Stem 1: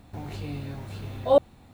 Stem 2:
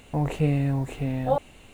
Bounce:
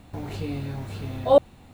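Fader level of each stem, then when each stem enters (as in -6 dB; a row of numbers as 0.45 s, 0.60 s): +2.5 dB, -12.5 dB; 0.00 s, 0.00 s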